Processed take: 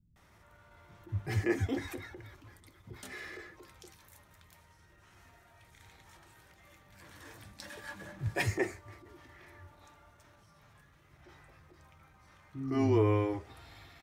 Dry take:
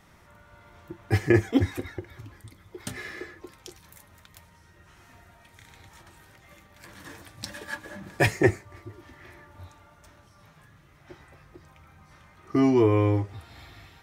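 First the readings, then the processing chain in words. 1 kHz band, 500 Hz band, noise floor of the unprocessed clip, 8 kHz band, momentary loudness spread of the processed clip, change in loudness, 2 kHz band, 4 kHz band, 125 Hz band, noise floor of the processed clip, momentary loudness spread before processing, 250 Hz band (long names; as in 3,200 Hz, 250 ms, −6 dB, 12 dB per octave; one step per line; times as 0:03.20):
−7.0 dB, −8.0 dB, −57 dBFS, −7.0 dB, 24 LU, −8.5 dB, −8.0 dB, −7.5 dB, −7.0 dB, −63 dBFS, 22 LU, −9.0 dB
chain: transient designer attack −7 dB, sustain +2 dB
multiband delay without the direct sound lows, highs 160 ms, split 210 Hz
level −5.5 dB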